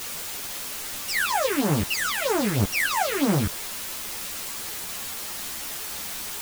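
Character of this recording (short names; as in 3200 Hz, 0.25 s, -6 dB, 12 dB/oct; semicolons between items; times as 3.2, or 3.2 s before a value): phasing stages 4, 3.1 Hz, lowest notch 690–4700 Hz; a quantiser's noise floor 6-bit, dither triangular; a shimmering, thickened sound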